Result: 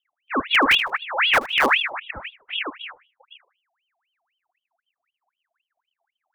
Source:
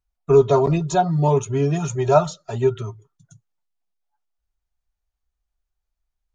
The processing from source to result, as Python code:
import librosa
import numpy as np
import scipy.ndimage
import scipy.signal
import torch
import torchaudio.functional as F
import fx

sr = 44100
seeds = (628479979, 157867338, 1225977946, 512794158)

p1 = fx.pitch_trill(x, sr, semitones=10.0, every_ms=131)
p2 = fx.dereverb_blind(p1, sr, rt60_s=0.68)
p3 = fx.auto_swell(p2, sr, attack_ms=414.0)
p4 = fx.lowpass_res(p3, sr, hz=350.0, q=3.6)
p5 = (np.mod(10.0 ** (8.5 / 20.0) * p4 + 1.0, 2.0) - 1.0) / 10.0 ** (8.5 / 20.0)
p6 = p4 + (p5 * librosa.db_to_amplitude(-8.0))
p7 = fx.echo_feedback(p6, sr, ms=77, feedback_pct=36, wet_db=-16.5)
p8 = fx.ring_lfo(p7, sr, carrier_hz=1900.0, swing_pct=65, hz=3.9)
y = p8 * librosa.db_to_amplitude(-1.5)